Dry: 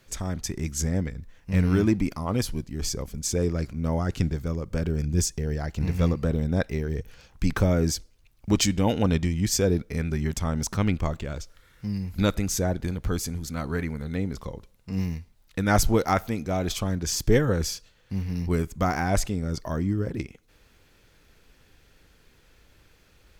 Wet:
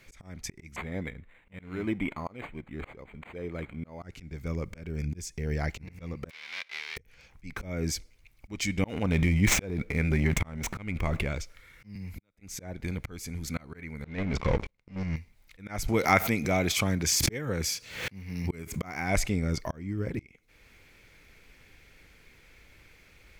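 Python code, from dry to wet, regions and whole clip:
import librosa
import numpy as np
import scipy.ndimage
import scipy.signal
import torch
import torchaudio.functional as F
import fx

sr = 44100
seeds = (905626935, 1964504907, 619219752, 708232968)

y = fx.chain(x, sr, fx.low_shelf(hz=220.0, db=-11.0),
    fx.resample_linear(factor=8), at=(0.76, 4.02))
y = fx.envelope_flatten(y, sr, power=0.1, at=(6.29, 6.96), fade=0.02)
y = fx.bandpass_q(y, sr, hz=4800.0, q=0.88, at=(6.29, 6.96), fade=0.02)
y = fx.air_absorb(y, sr, metres=320.0, at=(6.29, 6.96), fade=0.02)
y = fx.chain(y, sr, fx.median_filter(points=9),
    fx.transient(attack_db=3, sustain_db=11), at=(8.84, 11.29))
y = fx.chain(y, sr, fx.gate_flip(shuts_db=-20.0, range_db=-40),
    fx.band_squash(depth_pct=100), at=(11.95, 12.41))
y = fx.chain(y, sr, fx.level_steps(step_db=13),
    fx.leveller(passes=5),
    fx.air_absorb(metres=98.0), at=(14.04, 15.16))
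y = fx.chain(y, sr, fx.highpass(hz=82.0, slope=12),
    fx.high_shelf(hz=5700.0, db=4.0),
    fx.pre_swell(db_per_s=81.0), at=(15.88, 19.16))
y = fx.peak_eq(y, sr, hz=2200.0, db=13.0, octaves=0.34)
y = fx.auto_swell(y, sr, attack_ms=496.0)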